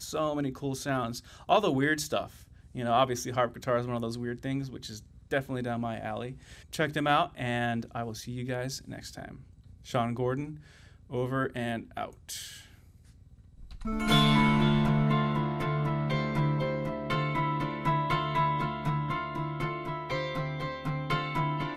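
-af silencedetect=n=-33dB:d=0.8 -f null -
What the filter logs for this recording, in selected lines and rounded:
silence_start: 12.45
silence_end: 13.82 | silence_duration: 1.36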